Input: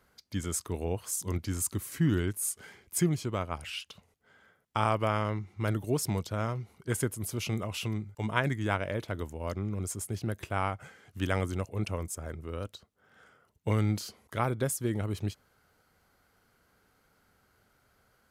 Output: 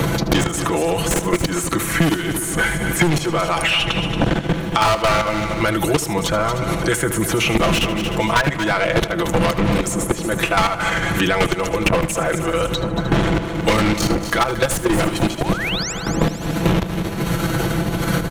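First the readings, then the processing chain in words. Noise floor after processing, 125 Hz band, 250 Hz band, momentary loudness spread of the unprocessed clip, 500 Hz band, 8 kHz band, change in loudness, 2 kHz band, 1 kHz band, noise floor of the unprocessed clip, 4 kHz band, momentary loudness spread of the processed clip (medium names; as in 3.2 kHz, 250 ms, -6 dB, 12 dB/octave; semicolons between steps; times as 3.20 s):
-26 dBFS, +11.0 dB, +15.0 dB, 10 LU, +16.0 dB, +11.5 dB, +13.5 dB, +19.0 dB, +16.0 dB, -70 dBFS, +20.5 dB, 4 LU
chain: wind noise 89 Hz -30 dBFS; band-stop 4.9 kHz, Q 6.2; comb 6 ms, depth 99%; dynamic bell 130 Hz, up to -3 dB, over -42 dBFS, Q 3; level held to a coarse grid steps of 24 dB; overdrive pedal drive 36 dB, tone 4.5 kHz, clips at -10 dBFS; painted sound rise, 15.38–15.93 s, 590–8000 Hz -35 dBFS; multi-head delay 76 ms, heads first and third, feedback 41%, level -13.5 dB; three bands compressed up and down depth 100%; trim +3 dB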